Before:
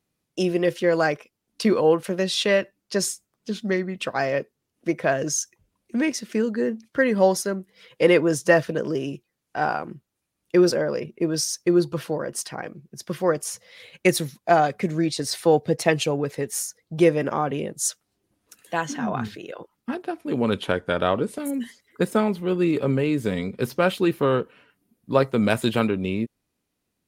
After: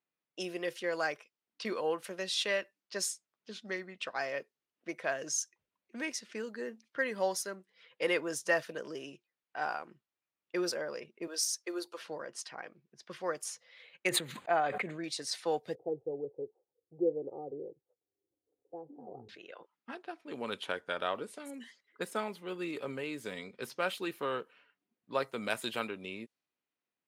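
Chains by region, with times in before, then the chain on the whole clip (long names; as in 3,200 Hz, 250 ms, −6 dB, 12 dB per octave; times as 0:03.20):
0:11.27–0:12.02: high-pass filter 350 Hz 24 dB per octave + high-shelf EQ 11,000 Hz +8 dB
0:14.09–0:15.04: moving average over 8 samples + level that may fall only so fast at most 35 dB per second
0:15.75–0:19.29: Butterworth low-pass 620 Hz + comb filter 2.4 ms, depth 71%
whole clip: low-pass that shuts in the quiet parts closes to 2,700 Hz, open at −19.5 dBFS; high-pass filter 990 Hz 6 dB per octave; level −7.5 dB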